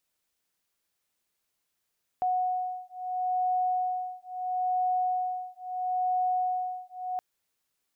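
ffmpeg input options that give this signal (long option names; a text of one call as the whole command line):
ffmpeg -f lavfi -i "aevalsrc='0.0335*(sin(2*PI*734*t)+sin(2*PI*734.75*t))':duration=4.97:sample_rate=44100" out.wav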